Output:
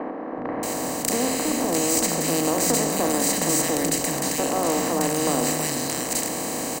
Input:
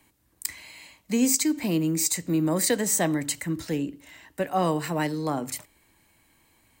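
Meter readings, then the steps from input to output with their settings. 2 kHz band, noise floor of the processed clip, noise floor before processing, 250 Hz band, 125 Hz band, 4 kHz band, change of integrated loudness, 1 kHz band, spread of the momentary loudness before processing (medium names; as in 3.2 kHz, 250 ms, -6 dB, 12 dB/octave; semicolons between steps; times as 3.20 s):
+5.0 dB, -31 dBFS, -66 dBFS, +1.5 dB, -1.0 dB, +6.5 dB, +3.5 dB, +6.0 dB, 13 LU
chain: spectral levelling over time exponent 0.2; three bands offset in time mids, lows, highs 380/630 ms, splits 220/1600 Hz; Chebyshev shaper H 2 -10 dB, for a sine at -0.5 dBFS; trim -4.5 dB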